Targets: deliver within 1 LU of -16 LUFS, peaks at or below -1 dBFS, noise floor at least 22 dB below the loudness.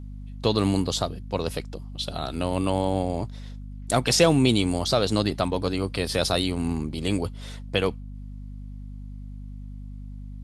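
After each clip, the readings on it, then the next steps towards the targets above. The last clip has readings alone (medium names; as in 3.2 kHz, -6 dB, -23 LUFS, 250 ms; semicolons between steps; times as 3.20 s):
hum 50 Hz; highest harmonic 250 Hz; hum level -35 dBFS; loudness -25.0 LUFS; peak level -6.5 dBFS; loudness target -16.0 LUFS
-> hum notches 50/100/150/200/250 Hz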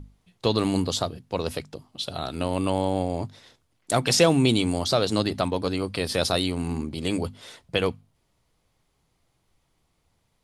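hum not found; loudness -25.5 LUFS; peak level -6.0 dBFS; loudness target -16.0 LUFS
-> trim +9.5 dB; peak limiter -1 dBFS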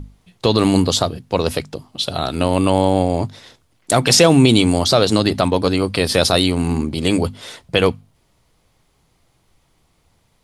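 loudness -16.5 LUFS; peak level -1.0 dBFS; noise floor -62 dBFS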